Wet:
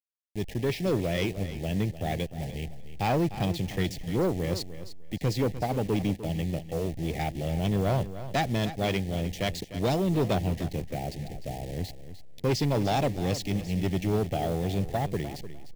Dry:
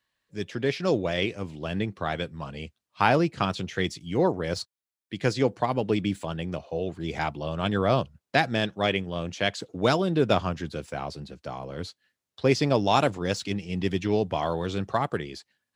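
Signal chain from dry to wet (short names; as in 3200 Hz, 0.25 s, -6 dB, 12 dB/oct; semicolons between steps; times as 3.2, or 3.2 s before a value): level-crossing sampler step -36.5 dBFS; Chebyshev band-stop 810–1800 Hz, order 3; low shelf 160 Hz +8 dB; soft clip -20 dBFS, distortion -11 dB; feedback echo 0.301 s, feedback 18%, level -13 dB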